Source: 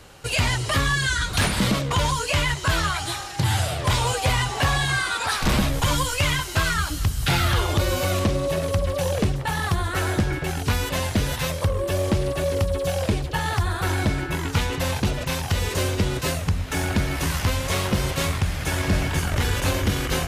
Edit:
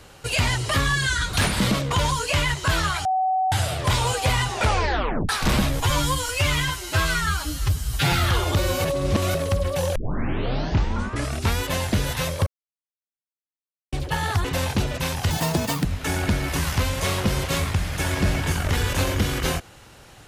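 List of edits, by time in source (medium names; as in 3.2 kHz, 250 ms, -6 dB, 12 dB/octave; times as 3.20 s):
3.05–3.52 s: bleep 753 Hz -18.5 dBFS
4.50 s: tape stop 0.79 s
5.80–7.35 s: stretch 1.5×
8.07–8.57 s: reverse
9.18 s: tape start 1.63 s
11.69–13.15 s: mute
13.67–14.71 s: delete
15.57–16.52 s: speed 175%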